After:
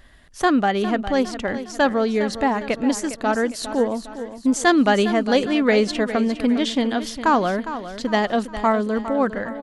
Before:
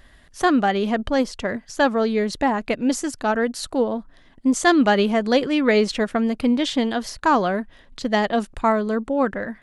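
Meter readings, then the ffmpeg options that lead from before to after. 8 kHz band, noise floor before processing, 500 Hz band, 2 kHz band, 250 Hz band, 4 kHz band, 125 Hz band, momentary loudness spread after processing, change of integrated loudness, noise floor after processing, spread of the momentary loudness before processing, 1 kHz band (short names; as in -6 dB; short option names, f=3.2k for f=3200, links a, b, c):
+0.5 dB, -51 dBFS, +0.5 dB, +0.5 dB, +0.5 dB, +0.5 dB, n/a, 7 LU, 0.0 dB, -39 dBFS, 7 LU, +0.5 dB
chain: -af "aecho=1:1:407|814|1221|1628|2035:0.251|0.113|0.0509|0.0229|0.0103"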